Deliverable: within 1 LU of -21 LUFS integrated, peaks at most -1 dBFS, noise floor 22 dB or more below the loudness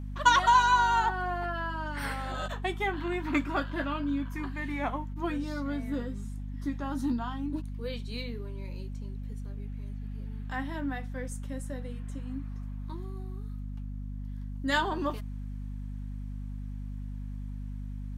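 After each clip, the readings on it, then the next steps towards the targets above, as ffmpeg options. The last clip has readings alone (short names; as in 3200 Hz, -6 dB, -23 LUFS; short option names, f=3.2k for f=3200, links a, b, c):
hum 50 Hz; harmonics up to 250 Hz; hum level -35 dBFS; loudness -32.5 LUFS; peak -10.0 dBFS; loudness target -21.0 LUFS
-> -af "bandreject=f=50:t=h:w=4,bandreject=f=100:t=h:w=4,bandreject=f=150:t=h:w=4,bandreject=f=200:t=h:w=4,bandreject=f=250:t=h:w=4"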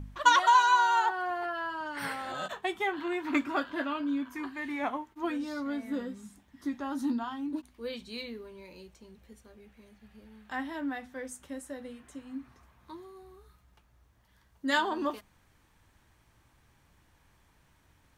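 hum none; loudness -31.0 LUFS; peak -10.0 dBFS; loudness target -21.0 LUFS
-> -af "volume=10dB,alimiter=limit=-1dB:level=0:latency=1"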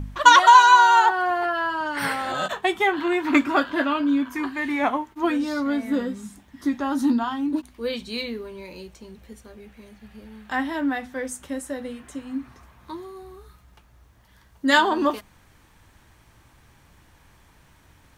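loudness -21.0 LUFS; peak -1.0 dBFS; noise floor -56 dBFS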